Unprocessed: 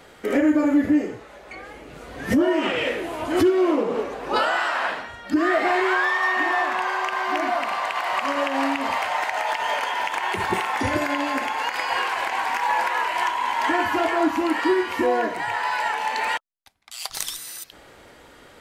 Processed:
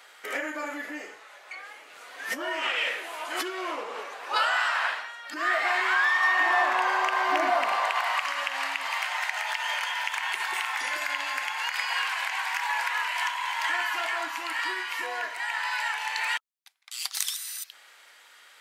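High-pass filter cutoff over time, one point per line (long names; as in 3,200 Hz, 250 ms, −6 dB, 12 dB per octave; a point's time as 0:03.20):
0:06.14 1,100 Hz
0:06.81 390 Hz
0:07.78 390 Hz
0:08.27 1,500 Hz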